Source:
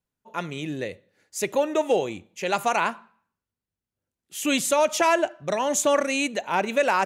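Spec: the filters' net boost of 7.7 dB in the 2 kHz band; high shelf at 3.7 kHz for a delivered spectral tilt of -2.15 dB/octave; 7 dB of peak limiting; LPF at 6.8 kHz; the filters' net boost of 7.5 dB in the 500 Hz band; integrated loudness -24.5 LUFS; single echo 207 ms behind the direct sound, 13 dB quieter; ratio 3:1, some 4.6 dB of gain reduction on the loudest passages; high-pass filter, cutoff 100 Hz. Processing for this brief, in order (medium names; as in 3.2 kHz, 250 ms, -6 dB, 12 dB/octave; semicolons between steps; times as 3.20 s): high-pass 100 Hz; low-pass 6.8 kHz; peaking EQ 500 Hz +8.5 dB; peaking EQ 2 kHz +7.5 dB; treble shelf 3.7 kHz +8 dB; compression 3:1, threshold -15 dBFS; peak limiter -11 dBFS; delay 207 ms -13 dB; trim -2 dB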